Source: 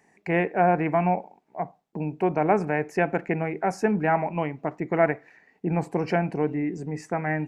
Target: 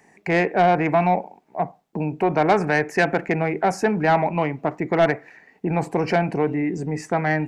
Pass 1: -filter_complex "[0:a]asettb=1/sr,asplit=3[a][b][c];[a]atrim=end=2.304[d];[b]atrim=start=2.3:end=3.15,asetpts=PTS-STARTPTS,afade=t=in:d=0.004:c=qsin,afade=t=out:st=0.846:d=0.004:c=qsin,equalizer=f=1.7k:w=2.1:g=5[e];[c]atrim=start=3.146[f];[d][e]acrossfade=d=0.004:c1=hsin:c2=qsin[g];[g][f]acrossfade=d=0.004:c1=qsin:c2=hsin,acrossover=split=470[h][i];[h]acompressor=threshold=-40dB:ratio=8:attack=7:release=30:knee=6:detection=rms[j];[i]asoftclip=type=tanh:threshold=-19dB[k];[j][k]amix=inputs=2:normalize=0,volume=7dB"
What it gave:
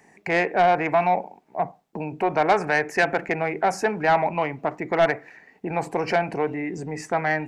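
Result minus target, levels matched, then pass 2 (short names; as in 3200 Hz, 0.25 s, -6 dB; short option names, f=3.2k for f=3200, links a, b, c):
compressor: peak gain reduction +9.5 dB
-filter_complex "[0:a]asettb=1/sr,asplit=3[a][b][c];[a]atrim=end=2.304[d];[b]atrim=start=2.3:end=3.15,asetpts=PTS-STARTPTS,afade=t=in:d=0.004:c=qsin,afade=t=out:st=0.846:d=0.004:c=qsin,equalizer=f=1.7k:w=2.1:g=5[e];[c]atrim=start=3.146[f];[d][e]acrossfade=d=0.004:c1=hsin:c2=qsin[g];[g][f]acrossfade=d=0.004:c1=qsin:c2=hsin,acrossover=split=470[h][i];[h]acompressor=threshold=-29dB:ratio=8:attack=7:release=30:knee=6:detection=rms[j];[i]asoftclip=type=tanh:threshold=-19dB[k];[j][k]amix=inputs=2:normalize=0,volume=7dB"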